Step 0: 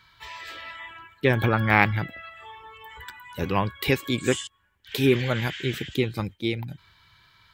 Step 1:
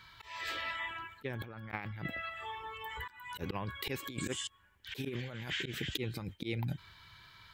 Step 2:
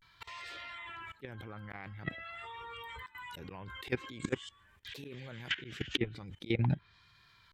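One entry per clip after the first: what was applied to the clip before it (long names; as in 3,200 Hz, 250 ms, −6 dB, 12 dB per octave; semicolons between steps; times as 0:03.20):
volume swells 247 ms; compressor whose output falls as the input rises −35 dBFS, ratio −1; level −4 dB
output level in coarse steps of 18 dB; treble cut that deepens with the level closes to 2,200 Hz, closed at −36.5 dBFS; pitch vibrato 0.46 Hz 90 cents; level +8 dB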